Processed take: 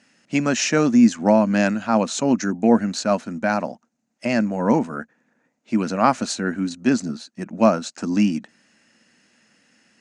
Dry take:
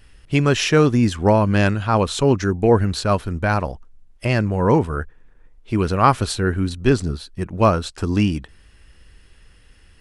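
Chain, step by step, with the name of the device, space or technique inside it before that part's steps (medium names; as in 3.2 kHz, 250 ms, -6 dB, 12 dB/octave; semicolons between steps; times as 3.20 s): television speaker (cabinet simulation 190–8000 Hz, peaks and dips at 230 Hz +9 dB, 410 Hz -10 dB, 640 Hz +4 dB, 1.1 kHz -5 dB, 3.3 kHz -8 dB, 6.6 kHz +9 dB); trim -1 dB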